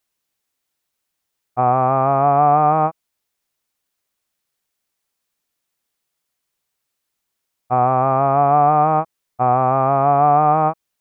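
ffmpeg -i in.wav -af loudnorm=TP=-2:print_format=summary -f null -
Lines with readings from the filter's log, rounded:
Input Integrated:    -16.1 LUFS
Input True Peak:      -3.6 dBTP
Input LRA:             4.0 LU
Input Threshold:     -26.3 LUFS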